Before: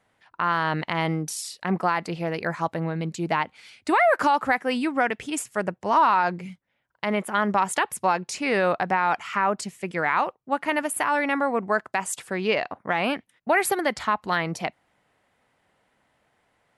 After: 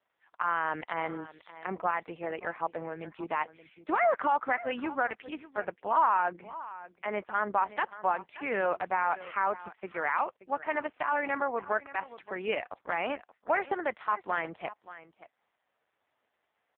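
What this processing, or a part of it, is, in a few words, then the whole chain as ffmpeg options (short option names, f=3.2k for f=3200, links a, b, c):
satellite phone: -af "highpass=360,lowpass=3k,aecho=1:1:578:0.158,volume=-5dB" -ar 8000 -c:a libopencore_amrnb -b:a 4750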